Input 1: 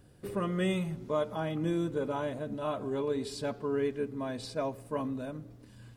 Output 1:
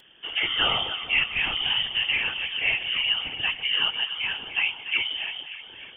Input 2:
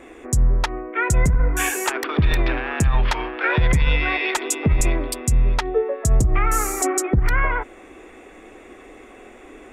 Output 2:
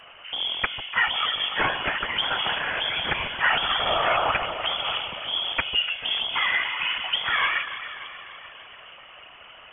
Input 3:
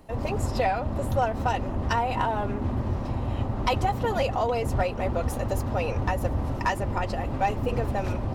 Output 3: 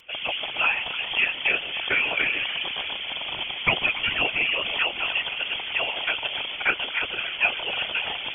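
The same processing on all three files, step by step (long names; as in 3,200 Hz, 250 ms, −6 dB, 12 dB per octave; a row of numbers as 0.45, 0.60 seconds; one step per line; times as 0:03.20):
loose part that buzzes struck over −23 dBFS, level −27 dBFS
spectral tilt +3 dB per octave
voice inversion scrambler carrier 3,300 Hz
delay that swaps between a low-pass and a high-pass 146 ms, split 1,000 Hz, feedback 76%, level −9 dB
random phases in short frames
loudness normalisation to −24 LKFS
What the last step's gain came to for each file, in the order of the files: +9.5, −2.0, +2.5 decibels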